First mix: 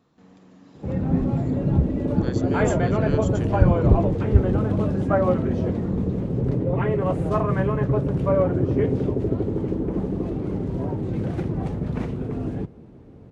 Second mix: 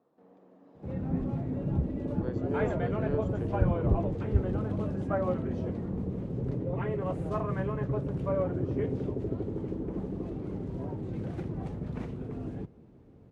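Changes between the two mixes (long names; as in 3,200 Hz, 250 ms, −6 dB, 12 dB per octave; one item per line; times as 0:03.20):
speech: add resonant band-pass 550 Hz, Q 1.5
background −9.5 dB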